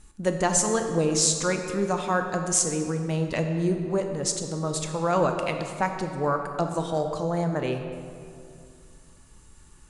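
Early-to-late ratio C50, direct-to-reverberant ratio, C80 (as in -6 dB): 6.0 dB, 5.0 dB, 7.0 dB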